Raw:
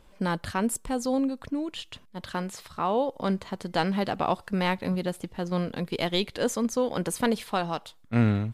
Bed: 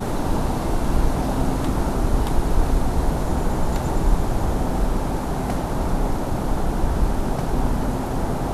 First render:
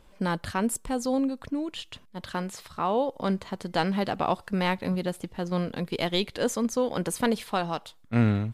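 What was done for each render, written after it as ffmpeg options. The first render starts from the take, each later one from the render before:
-af anull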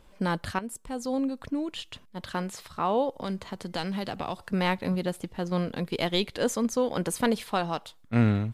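-filter_complex "[0:a]asettb=1/sr,asplit=3[a][b][c];[a]atrim=end=3.184[d];[b]atrim=start=3.18:end=4.52,asetpts=PTS-STARTPTS,afade=t=in:d=0.004:c=qsin,afade=t=out:st=1.336:d=0.004:c=qsin,acrossover=split=120|3000[e][f][g];[f]acompressor=threshold=-31dB:ratio=2.5:attack=3.2:release=140:knee=2.83:detection=peak[h];[e][h][g]amix=inputs=3:normalize=0[i];[c]atrim=start=4.516[j];[d][i]acrossfade=d=0.004:c1=hsin:c2=qsin[k];[k][j]acrossfade=d=0.004:c1=qsin:c2=hsin,asplit=2[l][m];[l]atrim=end=0.59,asetpts=PTS-STARTPTS,afade=t=out:st=0.586:d=0.004:c=hsin:silence=0.223872[n];[m]atrim=start=0.59,asetpts=PTS-STARTPTS,afade=t=in:d=0.86:silence=0.223872[o];[n][o]concat=n=2:v=0:a=1"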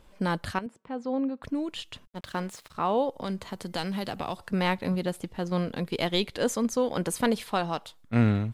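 -filter_complex "[0:a]asettb=1/sr,asplit=3[a][b][c];[a]atrim=end=0.664[d];[b]atrim=start=0.66:end=1.43,asetpts=PTS-STARTPTS,afade=t=in:d=0.004:c=qsin,afade=t=out:st=0.766:d=0.004:c=qsin,highpass=150,lowpass=2.4k[e];[c]atrim=start=1.426[f];[d][e]acrossfade=d=0.004:c1=hsin:c2=qsin[g];[g][f]acrossfade=d=0.004:c1=qsin:c2=hsin,asettb=1/sr,asplit=3[h][i][j];[h]atrim=end=2.074[k];[i]atrim=start=2.07:end=2.75,asetpts=PTS-STARTPTS,afade=t=in:d=0.004:c=qsin,afade=t=out:st=0.676:d=0.004:c=qsin,aeval=exprs='sgn(val(0))*max(abs(val(0))-0.00335,0)':c=same[l];[j]atrim=start=2.746[m];[k][l]acrossfade=d=0.004:c1=hsin:c2=qsin[n];[n][m]acrossfade=d=0.004:c1=qsin:c2=hsin,asettb=1/sr,asplit=3[o][p][q];[o]atrim=end=3.414[r];[p]atrim=start=3.41:end=4.36,asetpts=PTS-STARTPTS,afade=t=in:d=0.004:c=qsin,afade=t=out:st=0.946:d=0.004:c=qsin,highshelf=f=11k:g=9[s];[q]atrim=start=4.356[t];[r][s]acrossfade=d=0.004:c1=hsin:c2=qsin[u];[u][t]acrossfade=d=0.004:c1=qsin:c2=hsin"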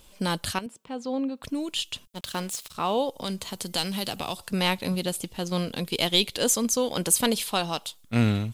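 -af "aexciter=amount=2:drive=8.8:freq=2.6k"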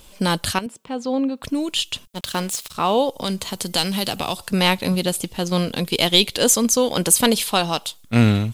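-af "volume=7dB,alimiter=limit=-2dB:level=0:latency=1"

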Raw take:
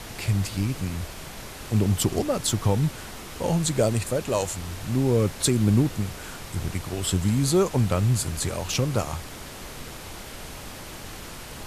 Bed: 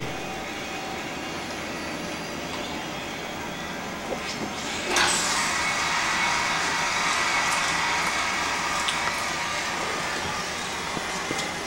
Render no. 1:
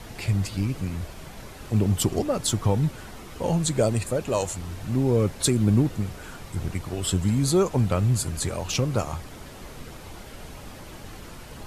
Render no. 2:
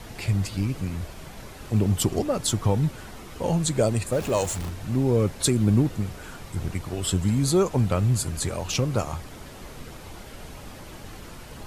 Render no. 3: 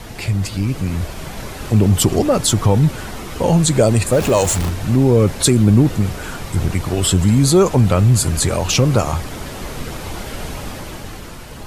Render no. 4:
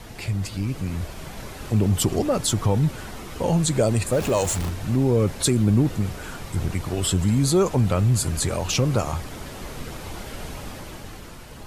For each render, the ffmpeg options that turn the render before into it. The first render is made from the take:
-af "afftdn=nr=7:nf=-40"
-filter_complex "[0:a]asettb=1/sr,asplit=3[a][b][c];[a]atrim=end=4.124[d];[b]atrim=start=4.12:end=4.7,asetpts=PTS-STARTPTS,afade=t=in:d=0.004:c=qsin,afade=t=out:st=0.576:d=0.004:c=qsin,aeval=exprs='val(0)+0.5*0.0237*sgn(val(0))':c=same[e];[c]atrim=start=4.696[f];[d][e]acrossfade=d=0.004:c1=hsin:c2=qsin[g];[g][f]acrossfade=d=0.004:c1=qsin:c2=hsin"
-filter_complex "[0:a]asplit=2[a][b];[b]alimiter=limit=-20.5dB:level=0:latency=1:release=29,volume=2dB[c];[a][c]amix=inputs=2:normalize=0,dynaudnorm=f=150:g=13:m=7dB"
-af "volume=-7dB"

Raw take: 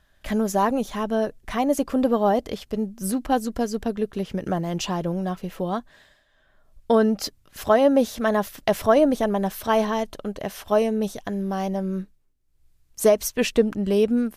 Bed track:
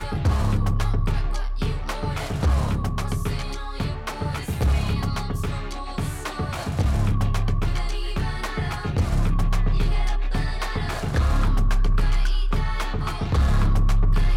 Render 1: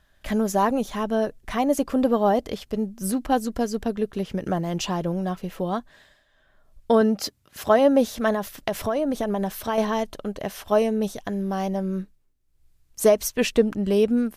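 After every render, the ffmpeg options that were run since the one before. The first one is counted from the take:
-filter_complex "[0:a]asettb=1/sr,asplit=3[a][b][c];[a]atrim=end=7.014[d];[b]atrim=start=7.01:end=7.79,asetpts=PTS-STARTPTS,afade=t=in:d=0.004:c=qsin,afade=t=out:st=0.776:d=0.004:c=qsin,highpass=75[e];[c]atrim=start=7.786[f];[d][e]acrossfade=d=0.004:c1=hsin:c2=qsin[g];[g][f]acrossfade=d=0.004:c1=qsin:c2=hsin,asettb=1/sr,asplit=3[h][i][j];[h]atrim=end=8.324[k];[i]atrim=start=8.32:end=9.78,asetpts=PTS-STARTPTS,afade=t=in:d=0.004:c=qsin,afade=t=out:st=1.456:d=0.004:c=qsin,acompressor=threshold=-20dB:ratio=6:attack=3.2:release=140:knee=1:detection=peak[l];[j]atrim=start=9.776[m];[k][l]acrossfade=d=0.004:c1=hsin:c2=qsin[n];[n][m]acrossfade=d=0.004:c1=qsin:c2=hsin"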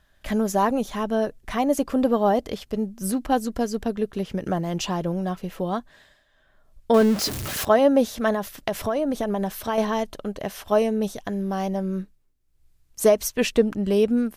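-filter_complex "[0:a]asettb=1/sr,asplit=3[a][b][c];[a]atrim=end=6.944[d];[b]atrim=start=6.94:end=7.65,asetpts=PTS-STARTPTS,afade=t=in:d=0.004:c=qsin,afade=t=out:st=0.706:d=0.004:c=qsin,aeval=exprs='val(0)+0.5*0.0596*sgn(val(0))':c=same[e];[c]atrim=start=7.646[f];[d][e]acrossfade=d=0.004:c1=hsin:c2=qsin[g];[g][f]acrossfade=d=0.004:c1=qsin:c2=hsin"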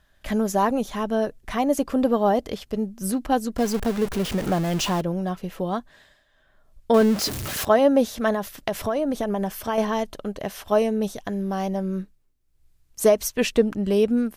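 -filter_complex "[0:a]asettb=1/sr,asplit=3[a][b][c];[a]atrim=end=3.584[d];[b]atrim=start=3.58:end=5.01,asetpts=PTS-STARTPTS,afade=t=in:d=0.004:c=qsin,afade=t=out:st=1.426:d=0.004:c=qsin,aeval=exprs='val(0)+0.5*0.0473*sgn(val(0))':c=same[e];[c]atrim=start=5.006[f];[d][e]acrossfade=d=0.004:c1=hsin:c2=qsin[g];[g][f]acrossfade=d=0.004:c1=qsin:c2=hsin,asettb=1/sr,asplit=3[h][i][j];[h]atrim=end=9.264[k];[i]atrim=start=9.26:end=9.91,asetpts=PTS-STARTPTS,afade=t=in:d=0.004:c=qsin,afade=t=out:st=0.646:d=0.004:c=qsin,bandreject=f=3.9k:w=8.5[l];[j]atrim=start=9.906[m];[k][l]acrossfade=d=0.004:c1=hsin:c2=qsin[n];[n][m]acrossfade=d=0.004:c1=qsin:c2=hsin"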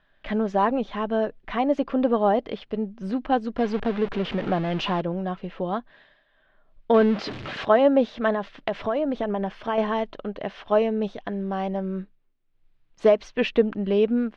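-af "lowpass=f=3.5k:w=0.5412,lowpass=f=3.5k:w=1.3066,equalizer=f=62:t=o:w=1.5:g=-14.5"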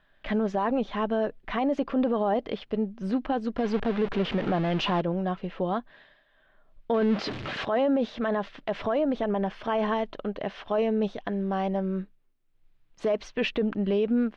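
-af "alimiter=limit=-17.5dB:level=0:latency=1:release=21"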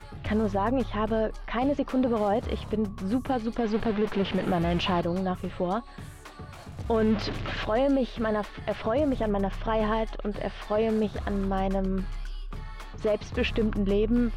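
-filter_complex "[1:a]volume=-15dB[a];[0:a][a]amix=inputs=2:normalize=0"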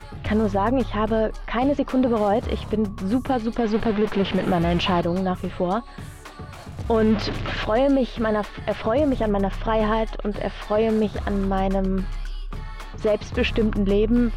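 -af "volume=5dB"

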